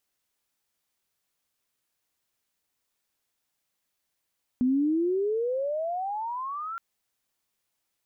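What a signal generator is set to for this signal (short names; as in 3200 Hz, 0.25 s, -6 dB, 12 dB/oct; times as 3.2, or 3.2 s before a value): gliding synth tone sine, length 2.17 s, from 245 Hz, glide +30 st, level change -12 dB, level -20 dB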